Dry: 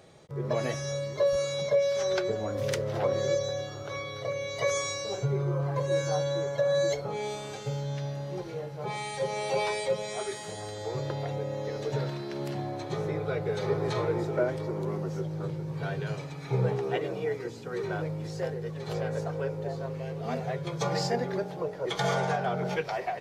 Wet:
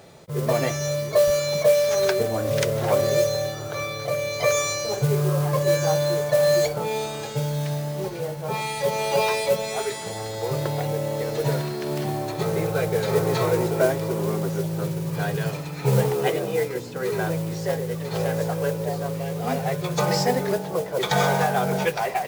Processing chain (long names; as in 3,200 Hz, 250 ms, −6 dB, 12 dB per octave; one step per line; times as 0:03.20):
noise that follows the level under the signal 17 dB
wrong playback speed 24 fps film run at 25 fps
level +7 dB